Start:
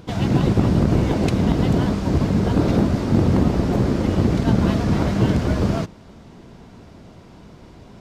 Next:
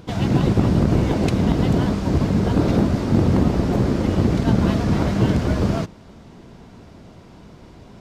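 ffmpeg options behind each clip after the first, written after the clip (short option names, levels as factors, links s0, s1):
-af anull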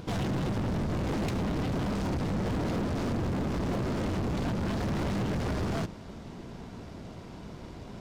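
-af "acompressor=threshold=0.112:ratio=5,aeval=exprs='0.251*(cos(1*acos(clip(val(0)/0.251,-1,1)))-cos(1*PI/2))+0.0355*(cos(6*acos(clip(val(0)/0.251,-1,1)))-cos(6*PI/2))':c=same,asoftclip=type=hard:threshold=0.0422"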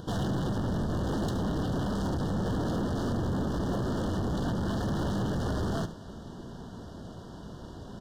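-af "asuperstop=centerf=2300:order=20:qfactor=2.2,aecho=1:1:72:0.188"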